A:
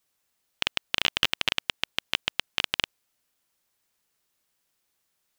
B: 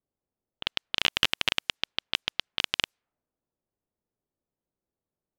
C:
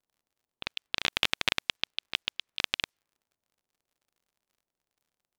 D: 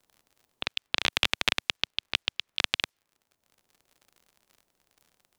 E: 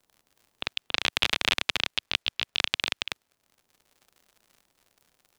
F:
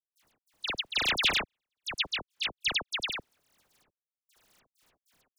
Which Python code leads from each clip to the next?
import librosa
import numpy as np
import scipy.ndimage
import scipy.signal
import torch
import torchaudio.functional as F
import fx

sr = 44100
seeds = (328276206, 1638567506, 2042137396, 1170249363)

y1 = fx.env_lowpass(x, sr, base_hz=500.0, full_db=-29.0)
y2 = fx.dmg_crackle(y1, sr, seeds[0], per_s=76.0, level_db=-57.0)
y2 = y2 * np.sin(2.0 * np.pi * 370.0 * np.arange(len(y2)) / sr)
y3 = fx.band_squash(y2, sr, depth_pct=40)
y3 = y3 * 10.0 ** (2.5 / 20.0)
y4 = y3 + 10.0 ** (-3.5 / 20.0) * np.pad(y3, (int(279 * sr / 1000.0), 0))[:len(y3)]
y5 = fx.step_gate(y4, sr, bpm=98, pattern='.x.xxxxxx...xx.x', floor_db=-60.0, edge_ms=4.5)
y5 = fx.dispersion(y5, sr, late='lows', ms=76.0, hz=2300.0)